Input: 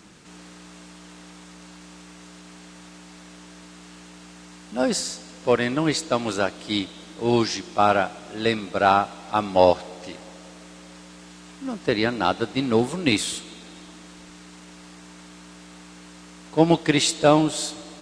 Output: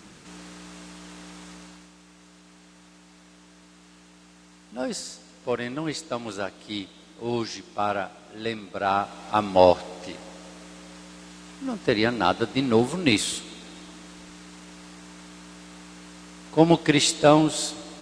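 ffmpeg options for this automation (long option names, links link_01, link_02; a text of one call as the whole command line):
ffmpeg -i in.wav -af "volume=9dB,afade=type=out:start_time=1.52:duration=0.4:silence=0.354813,afade=type=in:start_time=8.85:duration=0.41:silence=0.421697" out.wav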